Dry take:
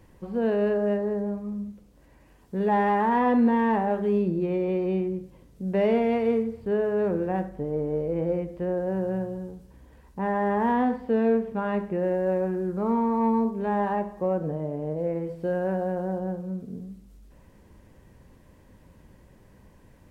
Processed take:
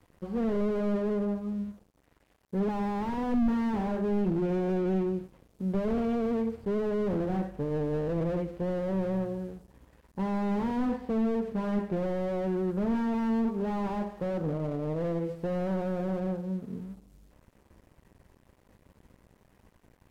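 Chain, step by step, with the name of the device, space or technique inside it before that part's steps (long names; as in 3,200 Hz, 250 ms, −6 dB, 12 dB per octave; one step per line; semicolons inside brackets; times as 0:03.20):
early transistor amplifier (dead-zone distortion −54 dBFS; slew-rate limiting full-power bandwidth 16 Hz)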